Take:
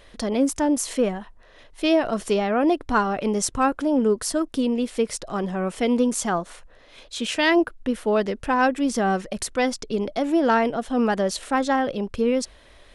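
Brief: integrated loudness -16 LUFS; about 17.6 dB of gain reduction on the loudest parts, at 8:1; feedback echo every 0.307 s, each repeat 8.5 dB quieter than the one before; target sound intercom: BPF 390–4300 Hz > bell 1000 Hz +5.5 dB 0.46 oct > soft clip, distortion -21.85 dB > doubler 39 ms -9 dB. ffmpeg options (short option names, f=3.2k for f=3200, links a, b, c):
-filter_complex "[0:a]acompressor=threshold=-34dB:ratio=8,highpass=390,lowpass=4.3k,equalizer=f=1k:t=o:w=0.46:g=5.5,aecho=1:1:307|614|921|1228:0.376|0.143|0.0543|0.0206,asoftclip=threshold=-25.5dB,asplit=2[a][b];[b]adelay=39,volume=-9dB[c];[a][c]amix=inputs=2:normalize=0,volume=23.5dB"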